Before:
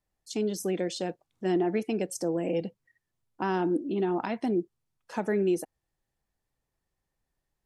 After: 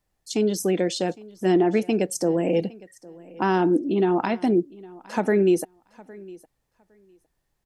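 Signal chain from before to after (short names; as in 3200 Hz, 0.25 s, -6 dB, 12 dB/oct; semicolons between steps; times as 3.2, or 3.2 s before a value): feedback echo 0.81 s, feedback 16%, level -22 dB; gain +7 dB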